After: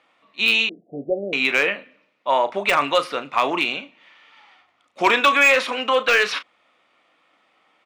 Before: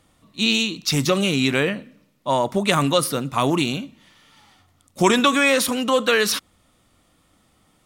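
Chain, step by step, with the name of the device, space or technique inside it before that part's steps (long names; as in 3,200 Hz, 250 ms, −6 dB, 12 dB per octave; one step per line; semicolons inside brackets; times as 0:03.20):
megaphone (band-pass filter 560–2,800 Hz; parametric band 2,400 Hz +6.5 dB 0.51 octaves; hard clipping −11.5 dBFS, distortion −18 dB; double-tracking delay 35 ms −12 dB)
0:00.69–0:01.33: Butterworth low-pass 720 Hz 96 dB per octave
de-essing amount 40%
level +3 dB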